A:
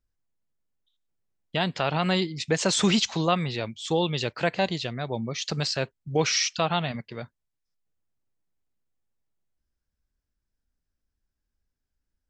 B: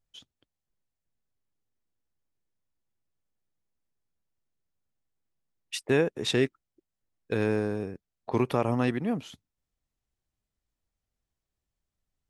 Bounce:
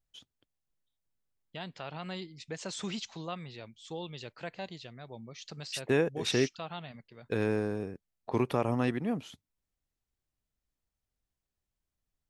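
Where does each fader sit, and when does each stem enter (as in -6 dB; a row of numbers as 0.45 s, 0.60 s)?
-15.5 dB, -3.0 dB; 0.00 s, 0.00 s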